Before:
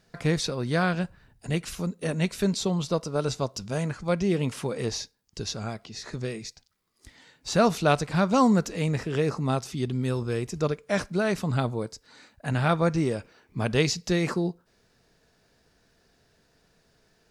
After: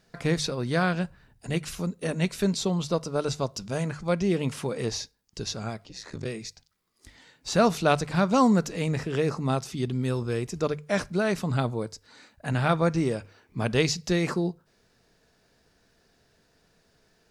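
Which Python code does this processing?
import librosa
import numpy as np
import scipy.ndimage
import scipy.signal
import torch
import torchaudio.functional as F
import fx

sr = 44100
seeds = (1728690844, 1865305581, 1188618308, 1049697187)

y = fx.hum_notches(x, sr, base_hz=50, count=3)
y = fx.ring_mod(y, sr, carrier_hz=fx.line((5.84, 110.0), (6.25, 20.0)), at=(5.84, 6.25), fade=0.02)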